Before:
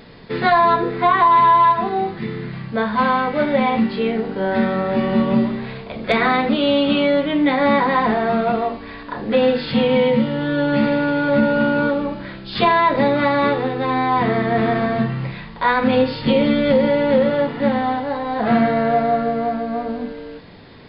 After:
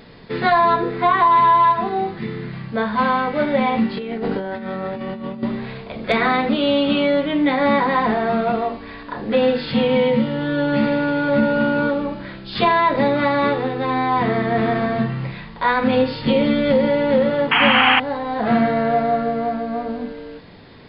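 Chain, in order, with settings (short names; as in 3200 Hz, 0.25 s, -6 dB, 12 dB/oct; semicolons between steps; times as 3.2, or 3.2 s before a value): 3.97–5.43 negative-ratio compressor -26 dBFS, ratio -1; 17.51–18 painted sound noise 700–3300 Hz -14 dBFS; gain -1 dB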